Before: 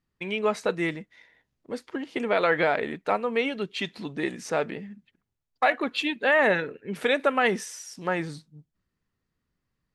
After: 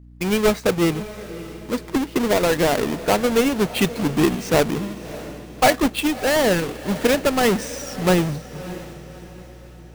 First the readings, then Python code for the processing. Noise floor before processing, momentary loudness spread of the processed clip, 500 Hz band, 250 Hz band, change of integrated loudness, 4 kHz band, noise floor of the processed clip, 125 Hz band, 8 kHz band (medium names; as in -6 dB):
-82 dBFS, 16 LU, +6.5 dB, +11.0 dB, +6.0 dB, +8.0 dB, -41 dBFS, +13.5 dB, +14.0 dB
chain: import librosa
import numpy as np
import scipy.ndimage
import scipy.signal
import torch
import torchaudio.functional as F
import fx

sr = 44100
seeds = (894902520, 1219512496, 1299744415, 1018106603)

p1 = fx.halfwave_hold(x, sr)
p2 = fx.low_shelf(p1, sr, hz=440.0, db=6.5)
p3 = fx.rider(p2, sr, range_db=5, speed_s=0.5)
p4 = fx.add_hum(p3, sr, base_hz=60, snr_db=23)
y = p4 + fx.echo_diffused(p4, sr, ms=612, feedback_pct=44, wet_db=-15, dry=0)